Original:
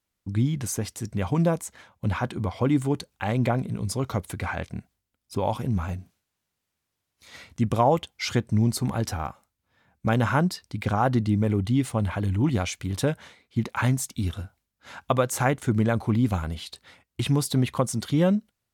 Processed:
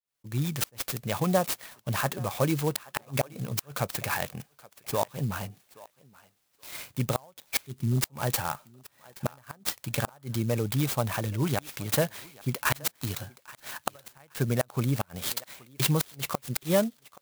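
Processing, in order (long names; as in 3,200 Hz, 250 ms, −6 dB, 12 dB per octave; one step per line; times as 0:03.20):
fade in at the beginning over 0.54 s
RIAA equalisation recording
gate on every frequency bin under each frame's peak −30 dB strong
octave-band graphic EQ 125/250/500/4,000/8,000 Hz +11/−5/+4/+5/−7 dB
gain on a spectral selection 0:08.34–0:08.79, 400–2,600 Hz −28 dB
gate with flip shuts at −12 dBFS, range −33 dB
feedback echo with a high-pass in the loop 898 ms, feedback 18%, high-pass 370 Hz, level −20 dB
wrong playback speed 44.1 kHz file played as 48 kHz
converter with an unsteady clock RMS 0.055 ms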